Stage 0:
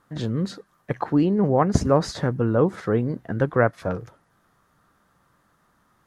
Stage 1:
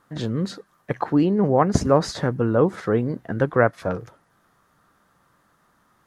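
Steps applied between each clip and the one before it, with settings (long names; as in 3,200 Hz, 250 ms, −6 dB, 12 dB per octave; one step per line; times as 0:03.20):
low-shelf EQ 150 Hz −4.5 dB
level +2 dB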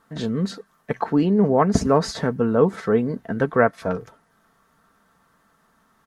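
comb filter 4.5 ms, depth 46%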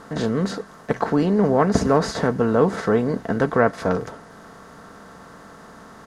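compressor on every frequency bin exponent 0.6
level −2.5 dB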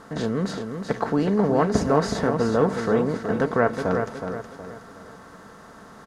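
repeating echo 369 ms, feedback 39%, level −7 dB
level −3 dB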